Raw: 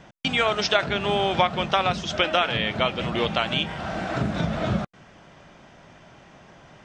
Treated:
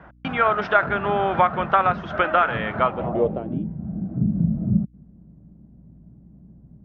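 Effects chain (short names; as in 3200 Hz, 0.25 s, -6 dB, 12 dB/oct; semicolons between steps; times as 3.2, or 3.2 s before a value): low-pass sweep 1400 Hz -> 200 Hz, 2.79–3.73; hum 60 Hz, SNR 30 dB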